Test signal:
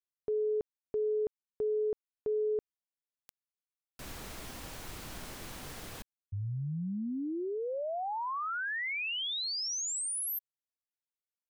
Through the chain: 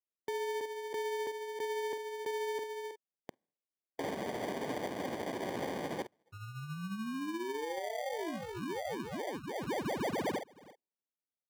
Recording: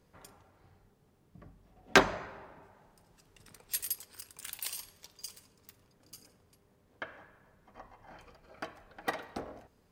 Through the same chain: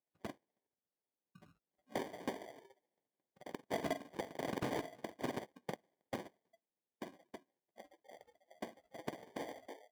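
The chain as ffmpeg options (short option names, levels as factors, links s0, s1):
-filter_complex "[0:a]bandreject=f=1200:w=24,asplit=2[s0][s1];[s1]adelay=46,volume=0.316[s2];[s0][s2]amix=inputs=2:normalize=0,agate=range=0.224:threshold=0.00141:ratio=16:release=110:detection=rms,equalizer=f=7900:w=1.6:g=-6.5,asplit=2[s3][s4];[s4]adelay=320,highpass=300,lowpass=3400,asoftclip=type=hard:threshold=0.299,volume=0.447[s5];[s3][s5]amix=inputs=2:normalize=0,tremolo=f=14:d=0.34,aexciter=amount=12.6:drive=8.2:freq=6900,afftdn=nr=26:nf=-45,acrusher=samples=33:mix=1:aa=0.000001,highpass=210,acompressor=threshold=0.0398:ratio=12:attack=0.12:release=291:knee=6:detection=rms,highshelf=f=3800:g=-8,volume=1.19"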